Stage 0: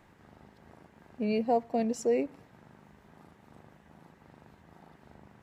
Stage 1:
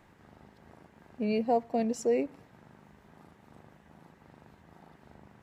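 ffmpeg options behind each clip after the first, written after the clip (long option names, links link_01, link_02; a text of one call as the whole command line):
ffmpeg -i in.wav -af anull out.wav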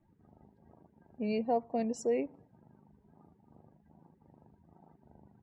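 ffmpeg -i in.wav -af "afftdn=noise_reduction=22:noise_floor=-53,volume=-3.5dB" out.wav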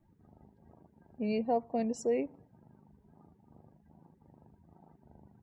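ffmpeg -i in.wav -af "lowshelf=frequency=110:gain=4.5" out.wav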